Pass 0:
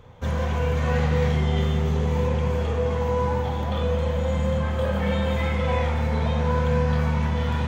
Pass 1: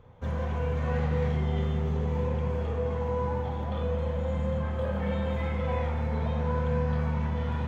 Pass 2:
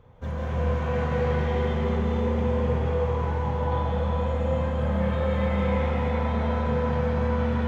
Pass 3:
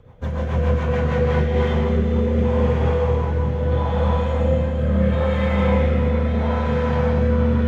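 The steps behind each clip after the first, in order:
high-shelf EQ 2,900 Hz −11 dB; level −5.5 dB
comb and all-pass reverb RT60 3.7 s, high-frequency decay 0.75×, pre-delay 115 ms, DRR −4.5 dB
rotating-speaker cabinet horn 7 Hz, later 0.75 Hz, at 0:00.88; level +7.5 dB

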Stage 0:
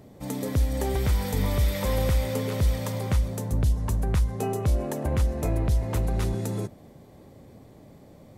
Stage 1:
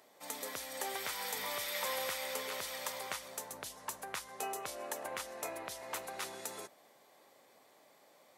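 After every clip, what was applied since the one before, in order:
high-pass filter 920 Hz 12 dB per octave
level −1.5 dB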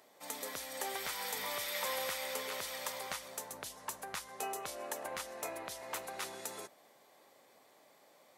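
wavefolder on the positive side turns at −26.5 dBFS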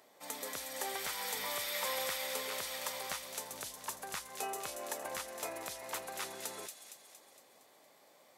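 delay with a high-pass on its return 231 ms, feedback 54%, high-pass 2,800 Hz, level −4.5 dB

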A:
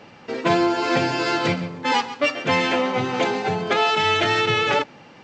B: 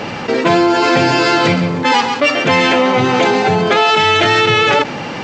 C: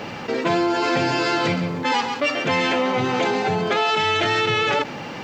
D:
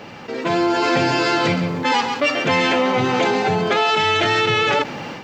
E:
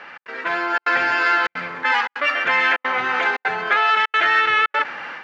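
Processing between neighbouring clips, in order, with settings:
in parallel at +2 dB: brickwall limiter −14.5 dBFS, peak gain reduction 7 dB; on the sum: envelope flattener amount 50%; level +1.5 dB
bit reduction 9 bits; level −8.5 dB
automatic gain control gain up to 11.5 dB; level −5.5 dB
gate pattern "xx.xxxxxx.xxxxx" 174 BPM −60 dB; resonant band-pass 1,600 Hz, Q 2.7; level +8 dB

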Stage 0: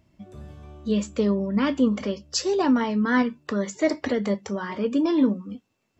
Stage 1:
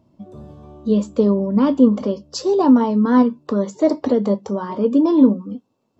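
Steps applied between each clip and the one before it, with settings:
octave-band graphic EQ 125/250/500/1,000/2,000/4,000 Hz +7/+10/+9/+11/−9/+5 dB
level −5 dB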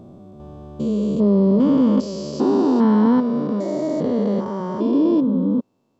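spectrum averaged block by block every 400 ms
level +3 dB

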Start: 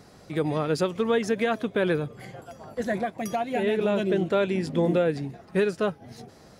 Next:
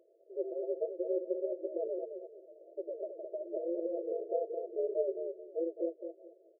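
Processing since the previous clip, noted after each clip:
repeating echo 216 ms, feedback 25%, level −7 dB
ring modulation 84 Hz
brick-wall band-pass 330–680 Hz
level −6 dB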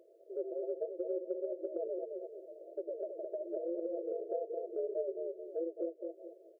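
downward compressor 2 to 1, threshold −44 dBFS, peak gain reduction 10 dB
level +4.5 dB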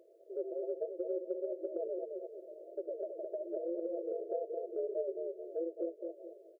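single-tap delay 1,088 ms −21 dB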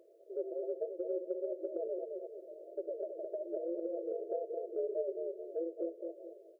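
convolution reverb RT60 0.70 s, pre-delay 7 ms, DRR 17 dB

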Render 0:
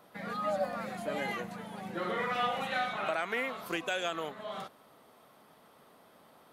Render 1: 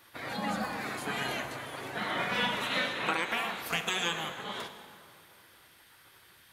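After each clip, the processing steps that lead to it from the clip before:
gate on every frequency bin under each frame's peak −10 dB weak
dense smooth reverb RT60 2.5 s, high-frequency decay 0.75×, DRR 8 dB
level +8 dB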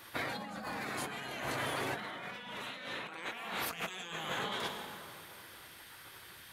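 compressor whose output falls as the input rises −41 dBFS, ratio −1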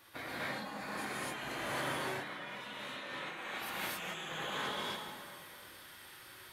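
reverb whose tail is shaped and stops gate 300 ms rising, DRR −7 dB
level −8.5 dB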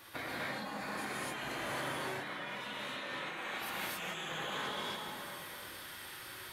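downward compressor 2 to 1, threshold −47 dBFS, peak gain reduction 8 dB
level +6 dB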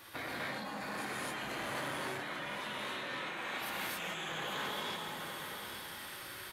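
single-tap delay 842 ms −9.5 dB
saturating transformer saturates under 1,000 Hz
level +1 dB

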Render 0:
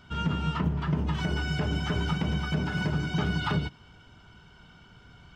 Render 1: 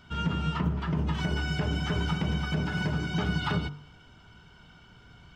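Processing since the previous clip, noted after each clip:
hum removal 48.97 Hz, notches 31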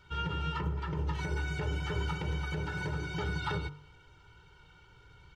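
comb filter 2.2 ms, depth 93%
level −7 dB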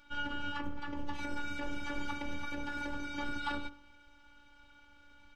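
phases set to zero 289 Hz
level +1 dB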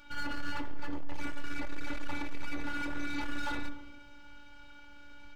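hard clipping −38 dBFS, distortion −7 dB
rectangular room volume 1,100 cubic metres, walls mixed, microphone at 0.5 metres
level +5.5 dB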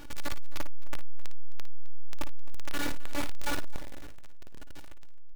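each half-wave held at its own peak
multi-tap delay 56/262 ms −11/−19 dB
level +2 dB

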